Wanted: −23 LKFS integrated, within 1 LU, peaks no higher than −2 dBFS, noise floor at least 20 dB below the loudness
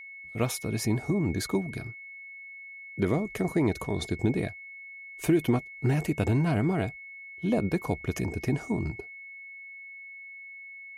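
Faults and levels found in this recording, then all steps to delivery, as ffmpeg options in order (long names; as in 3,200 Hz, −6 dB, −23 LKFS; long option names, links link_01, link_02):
interfering tone 2,200 Hz; level of the tone −42 dBFS; integrated loudness −29.0 LKFS; sample peak −13.5 dBFS; target loudness −23.0 LKFS
→ -af "bandreject=frequency=2200:width=30"
-af "volume=6dB"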